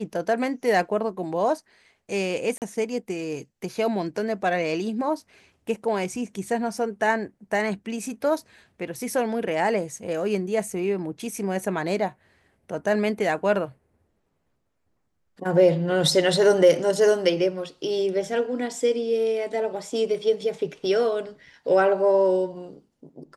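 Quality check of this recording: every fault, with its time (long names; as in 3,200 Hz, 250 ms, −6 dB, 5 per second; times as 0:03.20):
0:02.58–0:02.62: drop-out 38 ms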